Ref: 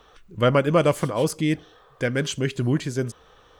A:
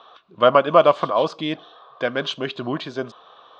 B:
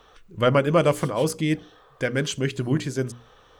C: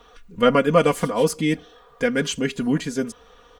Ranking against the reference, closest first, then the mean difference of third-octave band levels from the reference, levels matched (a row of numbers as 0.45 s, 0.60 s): B, C, A; 1.0 dB, 2.0 dB, 6.5 dB